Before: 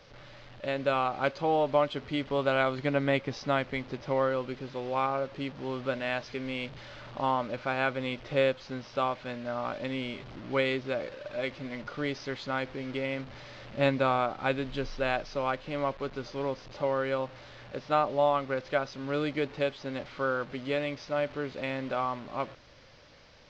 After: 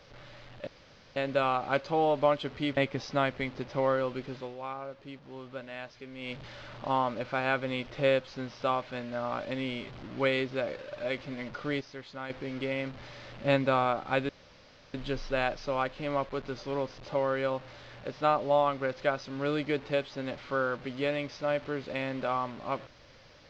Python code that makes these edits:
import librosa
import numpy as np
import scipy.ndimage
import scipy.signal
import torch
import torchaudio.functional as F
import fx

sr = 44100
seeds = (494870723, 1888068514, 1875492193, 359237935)

y = fx.edit(x, sr, fx.insert_room_tone(at_s=0.67, length_s=0.49),
    fx.cut(start_s=2.28, length_s=0.82),
    fx.fade_down_up(start_s=4.69, length_s=2.0, db=-9.5, fade_s=0.19),
    fx.clip_gain(start_s=12.14, length_s=0.49, db=-8.0),
    fx.insert_room_tone(at_s=14.62, length_s=0.65), tone=tone)